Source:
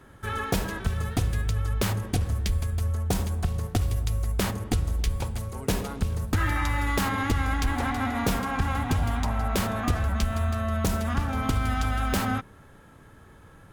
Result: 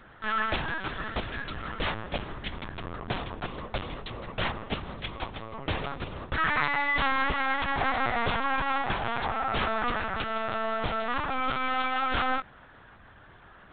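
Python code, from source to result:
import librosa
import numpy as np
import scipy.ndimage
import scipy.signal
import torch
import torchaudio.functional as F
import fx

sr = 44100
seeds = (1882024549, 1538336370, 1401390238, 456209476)

y = fx.highpass(x, sr, hz=720.0, slope=6)
y = np.clip(10.0 ** (25.0 / 20.0) * y, -1.0, 1.0) / 10.0 ** (25.0 / 20.0)
y = fx.lpc_vocoder(y, sr, seeds[0], excitation='pitch_kept', order=10)
y = y * 10.0 ** (5.5 / 20.0)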